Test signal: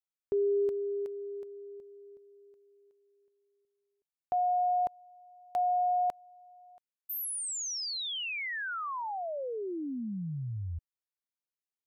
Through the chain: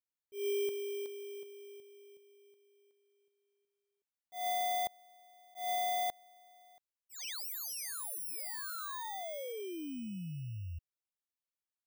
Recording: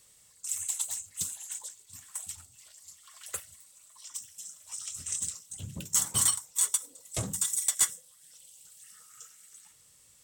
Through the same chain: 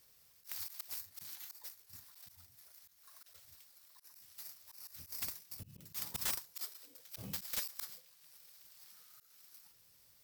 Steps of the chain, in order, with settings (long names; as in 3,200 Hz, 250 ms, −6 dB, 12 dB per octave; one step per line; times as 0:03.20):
samples in bit-reversed order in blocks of 16 samples
volume swells 163 ms
wrap-around overflow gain 23.5 dB
level −5.5 dB